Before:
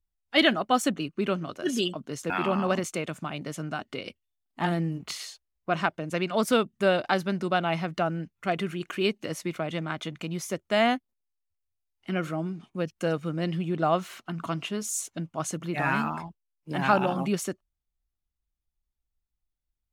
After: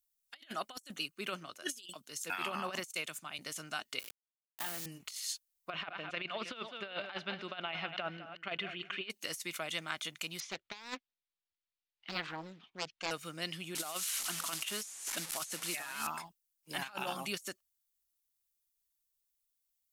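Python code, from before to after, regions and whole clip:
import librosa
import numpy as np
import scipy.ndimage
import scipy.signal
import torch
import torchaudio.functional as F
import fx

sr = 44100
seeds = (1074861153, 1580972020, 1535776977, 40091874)

y = fx.chain(x, sr, fx.high_shelf(hz=7500.0, db=2.5),
    fx.band_widen(depth_pct=70), at=(0.77, 3.39))
y = fx.chain(y, sr, fx.delta_hold(step_db=-35.5),
    fx.highpass(hz=160.0, slope=12),
    fx.level_steps(step_db=17), at=(3.99, 4.86))
y = fx.chain(y, sr, fx.reverse_delay(ms=206, wet_db=-14.0),
    fx.cheby1_lowpass(hz=3200.0, order=3),
    fx.echo_single(ms=203, db=-16.5), at=(5.7, 9.1))
y = fx.chain(y, sr, fx.lowpass(hz=3900.0, slope=24),
    fx.notch(hz=540.0, q=9.4),
    fx.doppler_dist(depth_ms=0.75), at=(10.4, 13.11))
y = fx.chain(y, sr, fx.delta_mod(bps=64000, step_db=-38.5),
    fx.peak_eq(hz=110.0, db=-8.5, octaves=0.94),
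    fx.band_squash(depth_pct=70), at=(13.75, 16.07))
y = scipy.signal.lfilter([1.0, -0.97], [1.0], y)
y = fx.over_compress(y, sr, threshold_db=-45.0, ratio=-0.5)
y = F.gain(torch.from_numpy(y), 6.0).numpy()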